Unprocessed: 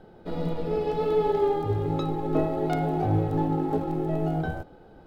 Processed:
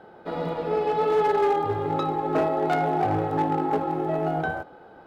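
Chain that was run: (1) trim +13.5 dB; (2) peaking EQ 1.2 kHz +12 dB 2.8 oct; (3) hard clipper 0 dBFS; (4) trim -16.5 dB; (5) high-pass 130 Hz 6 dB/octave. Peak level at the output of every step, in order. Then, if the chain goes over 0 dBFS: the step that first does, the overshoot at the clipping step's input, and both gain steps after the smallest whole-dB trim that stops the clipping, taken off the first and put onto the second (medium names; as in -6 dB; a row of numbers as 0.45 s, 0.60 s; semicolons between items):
+2.5 dBFS, +7.5 dBFS, 0.0 dBFS, -16.5 dBFS, -14.0 dBFS; step 1, 7.5 dB; step 1 +5.5 dB, step 4 -8.5 dB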